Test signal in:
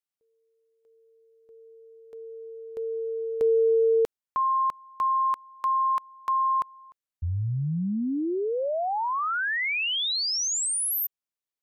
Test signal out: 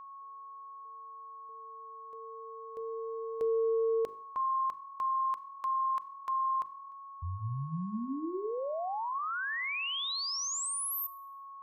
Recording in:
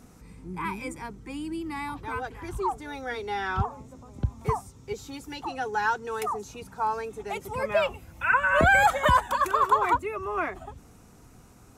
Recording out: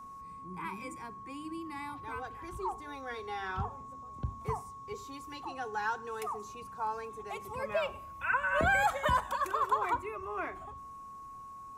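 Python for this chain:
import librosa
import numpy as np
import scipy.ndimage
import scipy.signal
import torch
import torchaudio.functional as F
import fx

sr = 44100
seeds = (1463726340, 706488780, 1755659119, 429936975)

y = x + 10.0 ** (-37.0 / 20.0) * np.sin(2.0 * np.pi * 1100.0 * np.arange(len(x)) / sr)
y = fx.hum_notches(y, sr, base_hz=50, count=8)
y = fx.rev_schroeder(y, sr, rt60_s=0.62, comb_ms=30, drr_db=18.5)
y = F.gain(torch.from_numpy(y), -8.0).numpy()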